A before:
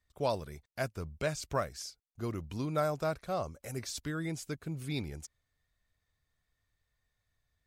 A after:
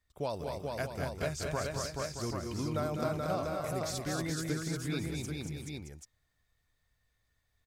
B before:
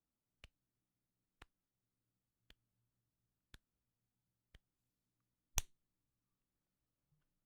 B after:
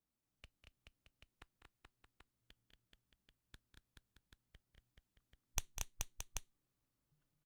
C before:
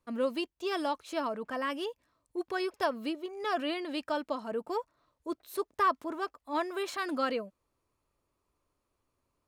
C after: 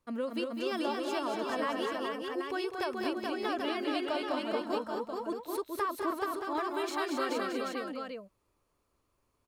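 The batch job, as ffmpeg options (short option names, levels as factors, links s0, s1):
-filter_complex "[0:a]acompressor=threshold=0.0282:ratio=6,asplit=2[s0][s1];[s1]aecho=0:1:200|231|429|623|785:0.335|0.596|0.668|0.335|0.531[s2];[s0][s2]amix=inputs=2:normalize=0"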